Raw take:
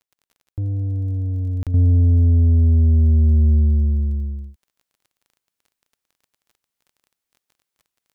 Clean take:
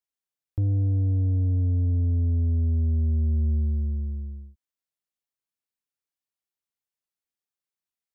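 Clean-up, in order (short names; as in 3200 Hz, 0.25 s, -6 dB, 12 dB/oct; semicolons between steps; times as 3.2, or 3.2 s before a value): de-click; interpolate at 1.63, 37 ms; gain correction -9 dB, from 1.74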